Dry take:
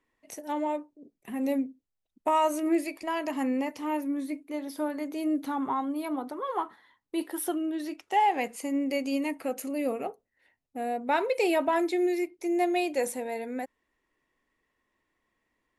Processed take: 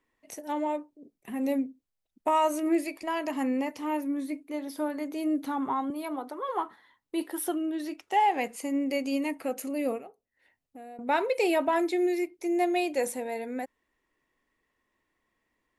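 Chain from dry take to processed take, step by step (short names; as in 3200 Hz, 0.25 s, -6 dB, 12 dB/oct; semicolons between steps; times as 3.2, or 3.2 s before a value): 5.9–6.49 HPF 310 Hz; 9.98–10.99 compressor 2.5:1, threshold -50 dBFS, peak gain reduction 14.5 dB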